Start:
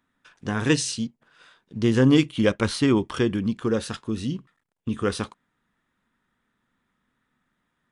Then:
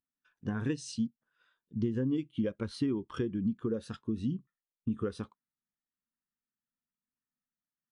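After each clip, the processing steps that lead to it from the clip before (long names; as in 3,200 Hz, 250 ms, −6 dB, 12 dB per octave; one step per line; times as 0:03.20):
downward compressor 12 to 1, threshold −26 dBFS, peak gain reduction 14.5 dB
every bin expanded away from the loudest bin 1.5 to 1
level −3.5 dB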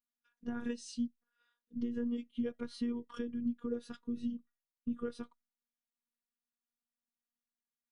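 phases set to zero 238 Hz
tuned comb filter 640 Hz, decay 0.41 s, mix 30%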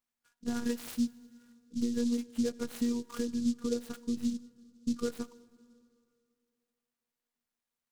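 dense smooth reverb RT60 2.5 s, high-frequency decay 0.7×, pre-delay 0 ms, DRR 18 dB
short delay modulated by noise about 5,200 Hz, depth 0.063 ms
level +5 dB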